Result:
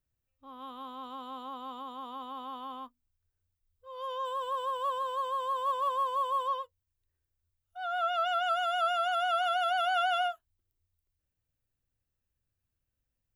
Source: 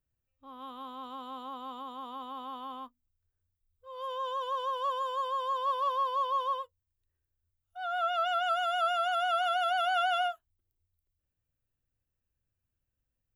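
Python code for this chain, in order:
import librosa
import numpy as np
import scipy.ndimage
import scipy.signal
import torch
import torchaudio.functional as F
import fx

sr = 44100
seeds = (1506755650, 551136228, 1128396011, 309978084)

y = fx.resample_linear(x, sr, factor=4, at=(4.25, 6.48))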